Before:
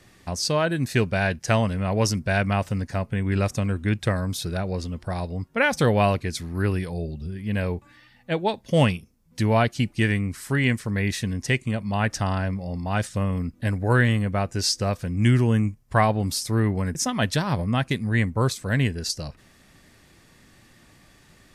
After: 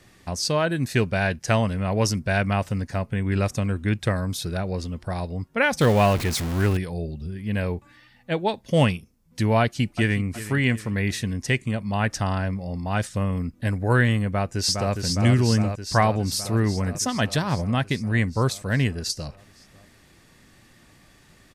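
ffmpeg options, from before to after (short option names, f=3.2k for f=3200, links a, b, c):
-filter_complex "[0:a]asettb=1/sr,asplit=3[a][b][c];[a]atrim=end=5.814[d];[b]atrim=start=5.81:end=6.77,asetpts=PTS-STARTPTS,afade=t=in:d=0.004:c=qsin,afade=t=out:st=0.956:d=0.004:c=qsin,aeval=exprs='val(0)+0.5*0.0562*sgn(val(0))':c=same[e];[c]atrim=start=6.766[f];[d][e]acrossfade=d=0.004:c1=hsin:c2=qsin[g];[g][f]acrossfade=d=0.004:c1=qsin:c2=hsin,asplit=2[h][i];[i]afade=t=in:st=9.6:d=0.01,afade=t=out:st=10.23:d=0.01,aecho=0:1:370|740|1110|1480:0.199526|0.0897868|0.0404041|0.0181818[j];[h][j]amix=inputs=2:normalize=0,asplit=2[k][l];[l]afade=t=in:st=14.27:d=0.01,afade=t=out:st=14.93:d=0.01,aecho=0:1:410|820|1230|1640|2050|2460|2870|3280|3690|4100|4510|4920:0.595662|0.446747|0.33506|0.251295|0.188471|0.141353|0.106015|0.0795113|0.0596335|0.0447251|0.0335438|0.0251579[m];[k][m]amix=inputs=2:normalize=0"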